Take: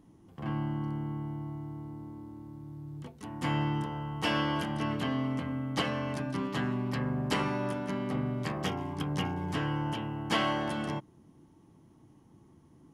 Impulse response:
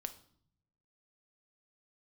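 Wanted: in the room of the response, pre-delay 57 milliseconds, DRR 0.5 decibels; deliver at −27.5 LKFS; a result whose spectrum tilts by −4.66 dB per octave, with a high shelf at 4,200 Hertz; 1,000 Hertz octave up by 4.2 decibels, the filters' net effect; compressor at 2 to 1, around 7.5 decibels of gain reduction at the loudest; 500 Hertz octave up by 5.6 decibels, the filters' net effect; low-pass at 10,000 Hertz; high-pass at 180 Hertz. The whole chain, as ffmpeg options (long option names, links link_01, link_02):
-filter_complex "[0:a]highpass=180,lowpass=10000,equalizer=frequency=500:width_type=o:gain=6.5,equalizer=frequency=1000:width_type=o:gain=3.5,highshelf=frequency=4200:gain=-6.5,acompressor=threshold=-36dB:ratio=2,asplit=2[link_01][link_02];[1:a]atrim=start_sample=2205,adelay=57[link_03];[link_02][link_03]afir=irnorm=-1:irlink=0,volume=2dB[link_04];[link_01][link_04]amix=inputs=2:normalize=0,volume=7.5dB"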